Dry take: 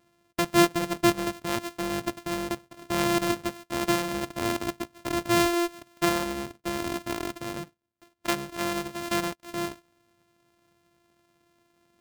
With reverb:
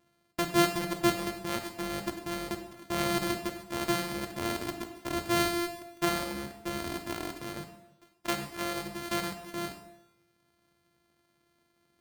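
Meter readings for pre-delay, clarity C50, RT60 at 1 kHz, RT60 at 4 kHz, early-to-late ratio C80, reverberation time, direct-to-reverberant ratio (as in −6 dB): 6 ms, 8.0 dB, 0.90 s, 0.80 s, 10.0 dB, 0.90 s, 4.5 dB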